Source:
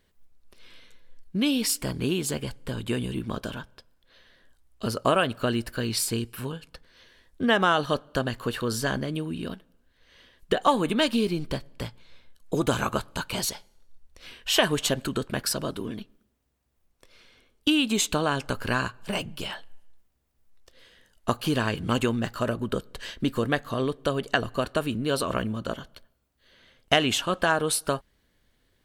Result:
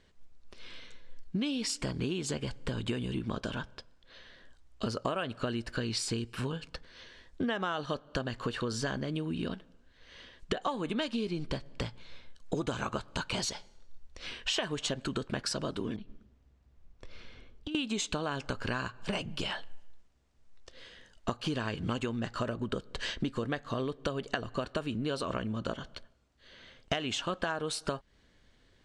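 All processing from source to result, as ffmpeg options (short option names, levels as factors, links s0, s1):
-filter_complex "[0:a]asettb=1/sr,asplit=3[s0][s1][s2];[s0]atrim=end=15.964[s3];[s1]atrim=start=15.96:end=17.75,asetpts=PTS-STARTPTS,afade=t=in:d=0.004:c=qsin,afade=t=out:st=1.786:d=0.004:c=qsin,lowpass=f=3800:p=1,lowshelf=f=170:g=11.5,acompressor=threshold=0.00891:ratio=8:attack=3.2:release=140:knee=1:detection=peak[s4];[s2]atrim=start=17.746[s5];[s3][s4]acrossfade=d=0.004:c1=hsin:c2=qsin[s6];[s6][s5]acrossfade=d=0.004:c1=qsin:c2=hsin,lowpass=f=7500:w=0.5412,lowpass=f=7500:w=1.3066,acompressor=threshold=0.02:ratio=6,volume=1.5"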